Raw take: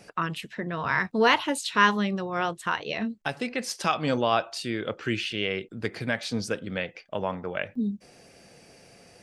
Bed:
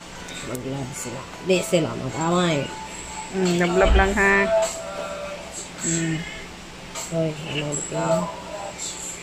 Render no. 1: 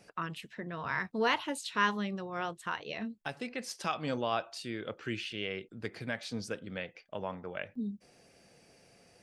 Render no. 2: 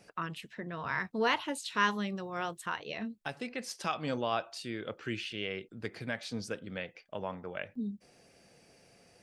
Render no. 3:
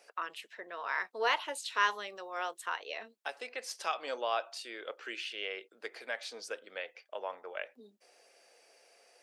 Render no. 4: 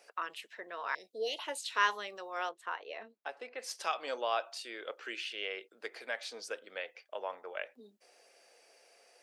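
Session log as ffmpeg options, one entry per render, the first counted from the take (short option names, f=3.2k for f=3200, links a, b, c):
-af "volume=-8.5dB"
-filter_complex "[0:a]asettb=1/sr,asplit=3[a][b][c];[a]atrim=end=1.704[d];[b]atrim=start=1.7:end=2.66,asetpts=PTS-STARTPTS,afade=t=in:d=0.004:c=qsin,afade=t=out:st=0.956:d=0.004:c=qsin,highshelf=f=8.1k:g=10.5[e];[c]atrim=start=2.656[f];[d][e]acrossfade=d=0.004:c1=hsin:c2=qsin[g];[g][f]acrossfade=d=0.004:c1=qsin:c2=hsin"
-af "highpass=f=450:w=0.5412,highpass=f=450:w=1.3066"
-filter_complex "[0:a]asettb=1/sr,asplit=3[a][b][c];[a]atrim=end=0.954[d];[b]atrim=start=0.95:end=1.39,asetpts=PTS-STARTPTS,afade=t=in:d=0.004:c=qsin,afade=t=out:st=0.436:d=0.004:c=qsin,asuperstop=centerf=1300:order=8:qfactor=0.54[e];[c]atrim=start=1.386[f];[d][e]acrossfade=d=0.004:c1=hsin:c2=qsin[g];[g][f]acrossfade=d=0.004:c1=qsin:c2=hsin,asettb=1/sr,asplit=3[h][i][j];[h]atrim=end=2.494[k];[i]atrim=start=2.49:end=3.6,asetpts=PTS-STARTPTS,afade=t=in:d=0.004:c=qsin,afade=t=out:st=1.106:d=0.004:c=qsin,lowpass=f=1.5k:p=1[l];[j]atrim=start=3.596[m];[k][l]acrossfade=d=0.004:c1=hsin:c2=qsin[n];[n][m]acrossfade=d=0.004:c1=qsin:c2=hsin"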